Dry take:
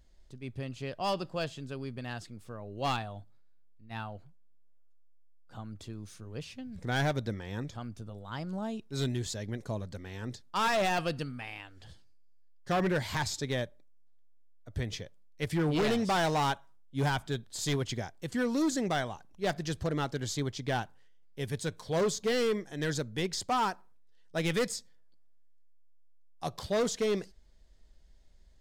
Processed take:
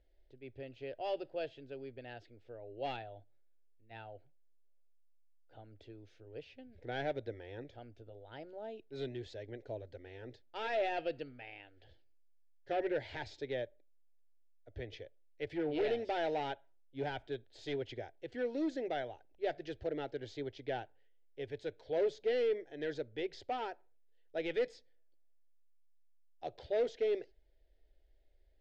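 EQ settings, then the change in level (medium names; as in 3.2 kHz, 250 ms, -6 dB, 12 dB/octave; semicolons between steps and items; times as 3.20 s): distance through air 210 m; tone controls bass -8 dB, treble -11 dB; static phaser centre 460 Hz, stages 4; -1.0 dB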